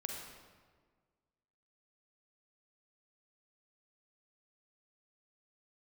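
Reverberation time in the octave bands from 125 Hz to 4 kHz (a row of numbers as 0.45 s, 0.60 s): 1.8 s, 1.8 s, 1.7 s, 1.5 s, 1.3 s, 1.1 s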